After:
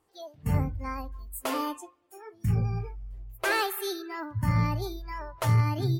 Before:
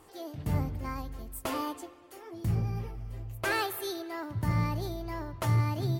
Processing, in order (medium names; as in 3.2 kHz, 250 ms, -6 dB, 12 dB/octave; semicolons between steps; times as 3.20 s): spectral noise reduction 19 dB; Chebyshev shaper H 4 -25 dB, 6 -31 dB, 8 -41 dB, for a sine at -17.5 dBFS; trim +3.5 dB